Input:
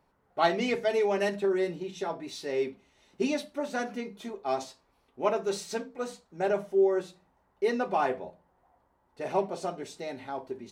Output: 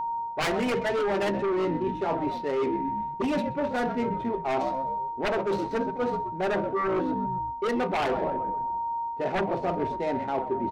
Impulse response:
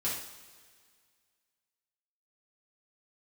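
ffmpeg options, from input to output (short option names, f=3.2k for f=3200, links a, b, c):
-filter_complex "[0:a]aemphasis=mode=reproduction:type=cd,asplit=2[a][b];[b]asplit=5[c][d][e][f][g];[c]adelay=129,afreqshift=-64,volume=-14dB[h];[d]adelay=258,afreqshift=-128,volume=-20.4dB[i];[e]adelay=387,afreqshift=-192,volume=-26.8dB[j];[f]adelay=516,afreqshift=-256,volume=-33.1dB[k];[g]adelay=645,afreqshift=-320,volume=-39.5dB[l];[h][i][j][k][l]amix=inputs=5:normalize=0[m];[a][m]amix=inputs=2:normalize=0,adynamicsmooth=sensitivity=7.5:basefreq=1.1k,aeval=exprs='0.224*sin(PI/2*3.55*val(0)/0.224)':c=same,aeval=exprs='val(0)+0.0447*sin(2*PI*930*n/s)':c=same,areverse,acompressor=threshold=-25dB:ratio=6,areverse"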